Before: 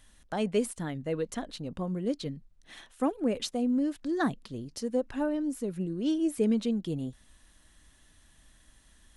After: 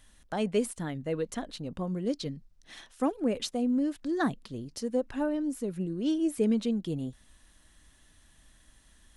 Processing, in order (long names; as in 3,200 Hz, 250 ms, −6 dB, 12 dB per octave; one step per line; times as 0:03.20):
0:01.87–0:03.23: parametric band 5,300 Hz +5.5 dB 0.63 octaves